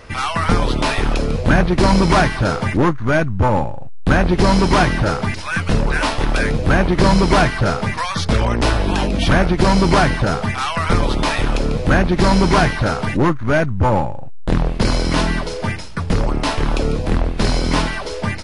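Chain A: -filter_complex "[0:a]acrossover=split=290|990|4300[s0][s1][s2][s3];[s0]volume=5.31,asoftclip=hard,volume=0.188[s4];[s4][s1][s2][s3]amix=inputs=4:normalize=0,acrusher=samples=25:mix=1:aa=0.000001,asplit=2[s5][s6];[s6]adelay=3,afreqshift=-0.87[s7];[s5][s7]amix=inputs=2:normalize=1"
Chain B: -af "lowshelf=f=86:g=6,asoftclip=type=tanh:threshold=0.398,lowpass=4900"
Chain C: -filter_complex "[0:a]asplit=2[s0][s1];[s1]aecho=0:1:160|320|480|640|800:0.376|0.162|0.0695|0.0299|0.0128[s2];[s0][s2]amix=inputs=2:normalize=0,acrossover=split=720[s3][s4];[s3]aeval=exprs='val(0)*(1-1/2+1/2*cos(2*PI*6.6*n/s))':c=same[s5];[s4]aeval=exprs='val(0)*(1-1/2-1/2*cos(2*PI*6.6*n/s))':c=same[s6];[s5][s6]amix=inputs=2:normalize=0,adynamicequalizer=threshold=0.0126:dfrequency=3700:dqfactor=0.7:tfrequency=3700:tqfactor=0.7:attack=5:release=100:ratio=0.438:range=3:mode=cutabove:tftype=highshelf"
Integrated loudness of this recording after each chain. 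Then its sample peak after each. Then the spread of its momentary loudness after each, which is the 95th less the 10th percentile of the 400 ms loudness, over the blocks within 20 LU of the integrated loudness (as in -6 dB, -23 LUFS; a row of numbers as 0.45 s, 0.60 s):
-21.5 LUFS, -18.5 LUFS, -22.0 LUFS; -3.0 dBFS, -8.0 dBFS, -3.5 dBFS; 8 LU, 6 LU, 7 LU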